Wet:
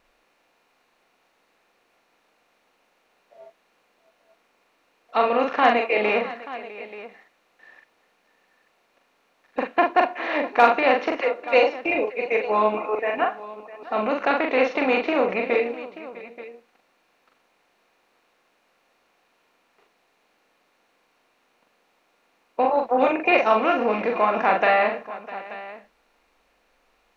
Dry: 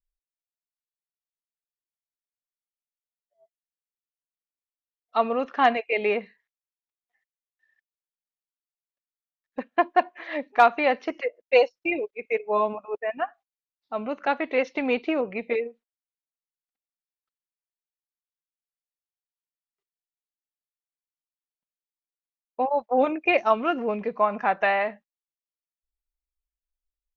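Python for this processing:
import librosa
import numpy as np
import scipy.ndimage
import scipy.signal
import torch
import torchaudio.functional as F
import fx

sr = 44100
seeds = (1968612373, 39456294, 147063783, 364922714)

p1 = fx.bin_compress(x, sr, power=0.6)
p2 = p1 + fx.echo_multitap(p1, sr, ms=(42, 653, 882), db=(-3.5, -17.5, -16.0), dry=0)
y = p2 * 10.0 ** (-1.5 / 20.0)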